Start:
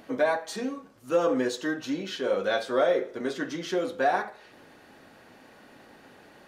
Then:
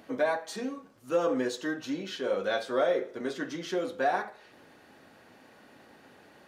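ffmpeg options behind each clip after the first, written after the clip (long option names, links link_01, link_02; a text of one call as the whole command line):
ffmpeg -i in.wav -af "highpass=49,volume=-3dB" out.wav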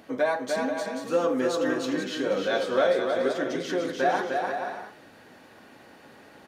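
ffmpeg -i in.wav -af "aecho=1:1:300|480|588|652.8|691.7:0.631|0.398|0.251|0.158|0.1,volume=2.5dB" out.wav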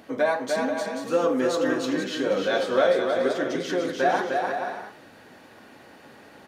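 ffmpeg -i in.wav -af "flanger=delay=7.8:depth=3.7:regen=-86:speed=1.8:shape=triangular,volume=6.5dB" out.wav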